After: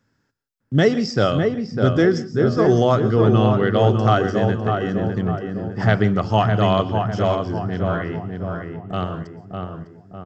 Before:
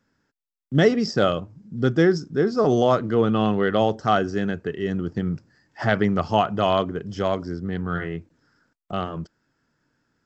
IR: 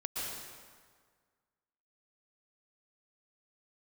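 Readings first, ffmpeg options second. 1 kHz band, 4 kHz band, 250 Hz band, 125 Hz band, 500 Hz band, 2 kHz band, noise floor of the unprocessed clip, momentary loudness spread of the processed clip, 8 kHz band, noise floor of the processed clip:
+2.5 dB, +2.0 dB, +3.0 dB, +8.0 dB, +3.0 dB, +2.0 dB, −85 dBFS, 13 LU, can't be measured, −69 dBFS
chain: -filter_complex "[0:a]equalizer=frequency=110:width_type=o:width=0.36:gain=10,asplit=2[link_01][link_02];[link_02]adelay=603,lowpass=frequency=1700:poles=1,volume=-4dB,asplit=2[link_03][link_04];[link_04]adelay=603,lowpass=frequency=1700:poles=1,volume=0.5,asplit=2[link_05][link_06];[link_06]adelay=603,lowpass=frequency=1700:poles=1,volume=0.5,asplit=2[link_07][link_08];[link_08]adelay=603,lowpass=frequency=1700:poles=1,volume=0.5,asplit=2[link_09][link_10];[link_10]adelay=603,lowpass=frequency=1700:poles=1,volume=0.5,asplit=2[link_11][link_12];[link_12]adelay=603,lowpass=frequency=1700:poles=1,volume=0.5[link_13];[link_01][link_03][link_05][link_07][link_09][link_11][link_13]amix=inputs=7:normalize=0,asplit=2[link_14][link_15];[1:a]atrim=start_sample=2205,afade=type=out:start_time=0.23:duration=0.01,atrim=end_sample=10584,highshelf=frequency=4200:gain=9.5[link_16];[link_15][link_16]afir=irnorm=-1:irlink=0,volume=-15.5dB[link_17];[link_14][link_17]amix=inputs=2:normalize=0"

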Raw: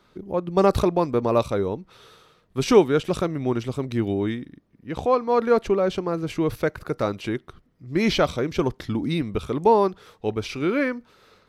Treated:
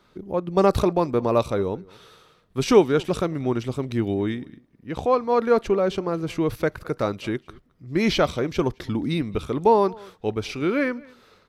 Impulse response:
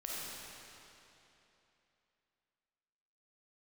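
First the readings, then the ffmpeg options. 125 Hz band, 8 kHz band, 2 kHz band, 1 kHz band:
0.0 dB, 0.0 dB, 0.0 dB, 0.0 dB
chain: -filter_complex "[0:a]asplit=2[link_01][link_02];[link_02]adelay=215.7,volume=-24dB,highshelf=frequency=4000:gain=-4.85[link_03];[link_01][link_03]amix=inputs=2:normalize=0"

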